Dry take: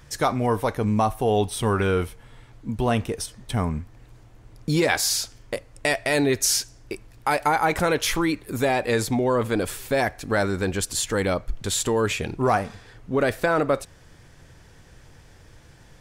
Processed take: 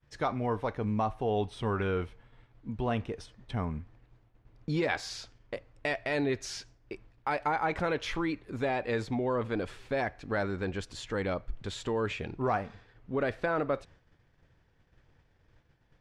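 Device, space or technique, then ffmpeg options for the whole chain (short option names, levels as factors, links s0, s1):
hearing-loss simulation: -af "lowpass=3500,agate=range=0.0224:threshold=0.00794:ratio=3:detection=peak,volume=0.376"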